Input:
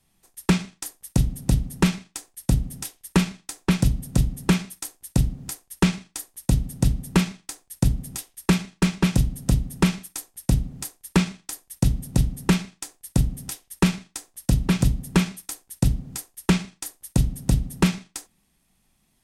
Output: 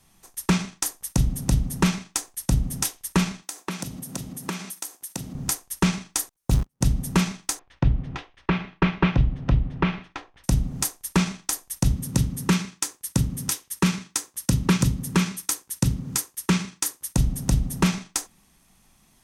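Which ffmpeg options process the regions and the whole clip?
-filter_complex "[0:a]asettb=1/sr,asplit=3[a][b][c];[a]atrim=end=3.424[d];[b]atrim=start=3.42:end=5.35,asetpts=PTS-STARTPTS,afade=t=in:d=0.004:c=qsin,afade=t=out:st=1.926:d=0.004:c=qsin,highpass=210,highshelf=f=11k:g=6,acompressor=threshold=-40dB:ratio=3:attack=3.2:release=140:knee=1:detection=peak[e];[c]atrim=start=5.346[f];[d][e]acrossfade=d=0.004:c1=hsin:c2=qsin[g];[g][f]acrossfade=d=0.004:c1=qsin:c2=hsin,asettb=1/sr,asplit=3[h][i][j];[h]atrim=end=6.294[k];[i]atrim=start=6.29:end=6.81,asetpts=PTS-STARTPTS,afade=t=in:d=0.004:c=qsin,afade=t=out:st=0.516:d=0.004:c=qsin,aeval=exprs='val(0)+0.5*0.0376*sgn(val(0))':c=same,agate=range=-55dB:threshold=-22dB:ratio=16:release=100:detection=peak[l];[j]atrim=start=6.806[m];[k][l]acrossfade=d=0.004:c1=hsin:c2=qsin[n];[n][m]acrossfade=d=0.004:c1=qsin:c2=hsin,asettb=1/sr,asplit=3[o][p][q];[o]atrim=end=7.594[r];[p]atrim=start=7.59:end=10.44,asetpts=PTS-STARTPTS,afade=t=in:d=0.004:c=qsin,afade=t=out:st=2.846:d=0.004:c=qsin,lowpass=f=3k:w=0.5412,lowpass=f=3k:w=1.3066,equalizer=f=210:t=o:w=0.35:g=-9[s];[q]atrim=start=10.436[t];[r][s]acrossfade=d=0.004:c1=hsin:c2=qsin[u];[u][t]acrossfade=d=0.004:c1=qsin:c2=hsin,asettb=1/sr,asplit=3[v][w][x];[v]atrim=end=11.944[y];[w]atrim=start=11.94:end=17.14,asetpts=PTS-STARTPTS,afade=t=in:d=0.004:c=qsin,afade=t=out:st=5.196:d=0.004:c=qsin,highpass=81,equalizer=f=700:w=4:g=-9.5[z];[x]atrim=start=17.136[aa];[y][z]acrossfade=d=0.004:c1=hsin:c2=qsin[ab];[ab][aa]acrossfade=d=0.004:c1=qsin:c2=hsin,equalizer=f=1.1k:w=1.5:g=4.5,alimiter=limit=-15dB:level=0:latency=1:release=272,equalizer=f=6.1k:w=4.3:g=5,volume=7dB"

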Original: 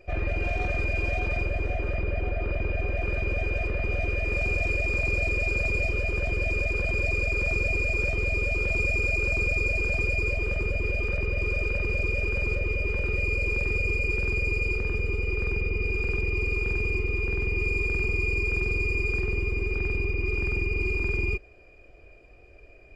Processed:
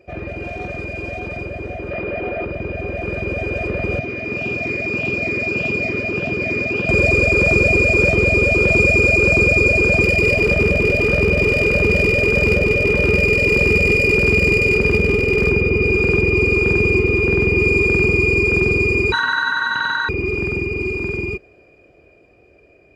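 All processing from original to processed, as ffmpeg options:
-filter_complex "[0:a]asettb=1/sr,asplit=3[a][b][c];[a]atrim=end=1.914[d];[b]atrim=start=1.91:end=2.45,asetpts=PTS-STARTPTS,afade=t=in:d=0.004:c=qsin,afade=t=out:st=0.536:d=0.004:c=qsin,lowpass=3.9k,equalizer=f=63:w=0.31:g=-12.5,acontrast=77[e];[c]atrim=start=2.446[f];[d][e]acrossfade=d=0.004:c1=hsin:c2=qsin[g];[g][f]acrossfade=d=0.004:c1=qsin:c2=hsin,asettb=1/sr,asplit=3[h][i][j];[h]atrim=end=3.994[k];[i]atrim=start=3.99:end=6.89,asetpts=PTS-STARTPTS,afade=t=in:d=0.004:c=qsin,afade=t=out:st=2.896:d=0.004:c=qsin,flanger=delay=4:depth=5.5:regen=-88:speed=1.7:shape=sinusoidal,highpass=130,equalizer=f=130:t=q:w=4:g=4,equalizer=f=260:t=q:w=4:g=6,equalizer=f=530:t=q:w=4:g=-6,lowpass=f=6.4k:w=0.5412,lowpass=f=6.4k:w=1.3066[l];[j]atrim=start=6.886[m];[k][l]acrossfade=d=0.004:c1=hsin:c2=qsin[n];[n][m]acrossfade=d=0.004:c1=qsin:c2=hsin,asettb=1/sr,asplit=3[o][p][q];[o]atrim=end=10.034[r];[p]atrim=start=10.03:end=15.51,asetpts=PTS-STARTPTS,afade=t=in:d=0.004:c=qsin,afade=t=out:st=5.476:d=0.004:c=qsin,aeval=exprs='clip(val(0),-1,0.0708)':c=same,aecho=1:1:199:0.398,atrim=end_sample=241668[s];[q]atrim=start=15.506[t];[r][s]acrossfade=d=0.004:c1=hsin:c2=qsin[u];[u][t]acrossfade=d=0.004:c1=qsin:c2=hsin,asettb=1/sr,asplit=3[v][w][x];[v]atrim=end=19.124[y];[w]atrim=start=19.12:end=20.09,asetpts=PTS-STARTPTS,afade=t=in:d=0.004:c=qsin,afade=t=out:st=0.966:d=0.004:c=qsin,equalizer=f=1.4k:w=4:g=11,aeval=exprs='val(0)*sin(2*PI*1500*n/s)':c=same[z];[x]atrim=start=20.086[aa];[y][z]acrossfade=d=0.004:c1=hsin:c2=qsin[ab];[ab][aa]acrossfade=d=0.004:c1=qsin:c2=hsin,dynaudnorm=f=650:g=13:m=14dB,highpass=150,lowshelf=f=440:g=9.5"

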